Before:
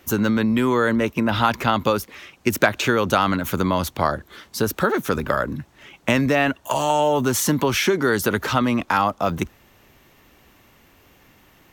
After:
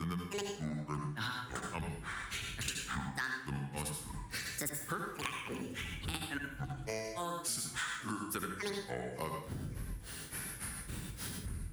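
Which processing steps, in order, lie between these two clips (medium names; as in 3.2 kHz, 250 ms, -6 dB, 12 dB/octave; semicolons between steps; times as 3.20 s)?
wind noise 96 Hz -36 dBFS; reverse echo 75 ms -12.5 dB; granulator 212 ms, grains 3.5 per s, spray 148 ms, pitch spread up and down by 12 st; fifteen-band graphic EQ 630 Hz -8 dB, 1.6 kHz +7 dB, 10 kHz +12 dB; reverberation RT60 0.40 s, pre-delay 66 ms, DRR 2.5 dB; upward compressor, threshold -25 dBFS; high-pass 52 Hz; treble shelf 4.5 kHz +8.5 dB; compression 5:1, threshold -33 dBFS, peak gain reduction 20 dB; modulated delay 559 ms, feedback 66%, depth 134 cents, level -22.5 dB; trim -4.5 dB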